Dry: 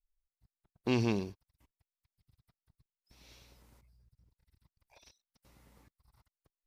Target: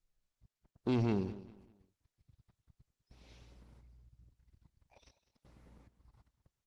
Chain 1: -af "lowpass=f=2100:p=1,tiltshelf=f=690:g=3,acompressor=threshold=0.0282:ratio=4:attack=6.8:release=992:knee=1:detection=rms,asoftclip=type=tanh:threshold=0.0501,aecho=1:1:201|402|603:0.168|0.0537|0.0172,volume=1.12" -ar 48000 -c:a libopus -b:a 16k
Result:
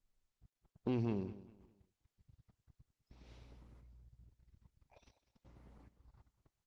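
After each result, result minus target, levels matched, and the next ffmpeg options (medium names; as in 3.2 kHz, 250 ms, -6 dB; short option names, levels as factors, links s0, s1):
compression: peak gain reduction +8 dB; 4 kHz band -4.0 dB
-af "lowpass=f=2100:p=1,tiltshelf=f=690:g=3,asoftclip=type=tanh:threshold=0.0501,aecho=1:1:201|402|603:0.168|0.0537|0.0172,volume=1.12" -ar 48000 -c:a libopus -b:a 16k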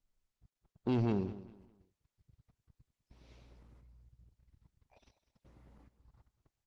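4 kHz band -3.0 dB
-af "lowpass=f=4800:p=1,tiltshelf=f=690:g=3,asoftclip=type=tanh:threshold=0.0501,aecho=1:1:201|402|603:0.168|0.0537|0.0172,volume=1.12" -ar 48000 -c:a libopus -b:a 16k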